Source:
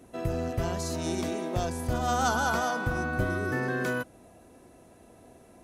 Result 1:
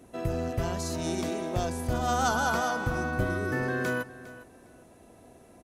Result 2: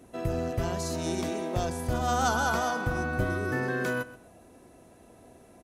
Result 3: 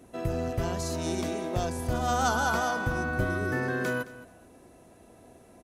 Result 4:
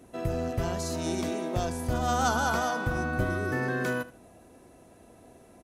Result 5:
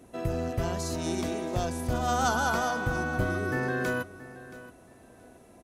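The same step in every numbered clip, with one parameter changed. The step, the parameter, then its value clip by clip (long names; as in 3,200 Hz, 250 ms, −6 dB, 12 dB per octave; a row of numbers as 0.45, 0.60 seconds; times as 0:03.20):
repeating echo, delay time: 405, 127, 216, 77, 675 milliseconds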